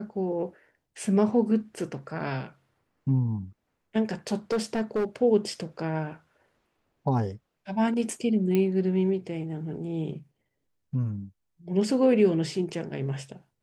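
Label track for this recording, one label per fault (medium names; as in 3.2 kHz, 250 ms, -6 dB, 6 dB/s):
4.510000	5.050000	clipped -22 dBFS
8.550000	8.550000	pop -14 dBFS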